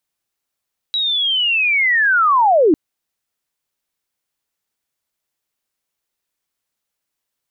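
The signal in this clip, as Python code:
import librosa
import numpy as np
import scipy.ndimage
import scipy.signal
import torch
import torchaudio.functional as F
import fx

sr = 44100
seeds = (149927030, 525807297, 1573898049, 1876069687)

y = fx.chirp(sr, length_s=1.8, from_hz=3900.0, to_hz=280.0, law='linear', from_db=-16.0, to_db=-8.5)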